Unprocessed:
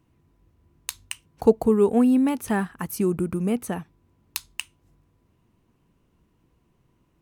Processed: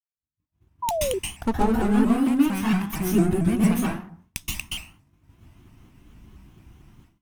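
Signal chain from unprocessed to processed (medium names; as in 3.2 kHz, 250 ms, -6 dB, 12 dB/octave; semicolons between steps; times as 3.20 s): comb filter that takes the minimum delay 0.33 ms; peaking EQ 480 Hz -14.5 dB 0.71 oct; plate-style reverb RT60 0.58 s, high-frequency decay 0.55×, pre-delay 115 ms, DRR -6.5 dB; painted sound fall, 0.82–1.19 s, 390–990 Hz -25 dBFS; level rider gain up to 16.5 dB; expander -41 dBFS; spectral noise reduction 12 dB; vibrato with a chosen wave saw up 4.4 Hz, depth 160 cents; trim -7.5 dB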